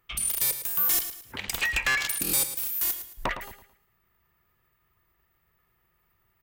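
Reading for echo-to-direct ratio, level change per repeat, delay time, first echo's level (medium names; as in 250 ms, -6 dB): -10.5 dB, -9.5 dB, 110 ms, -11.0 dB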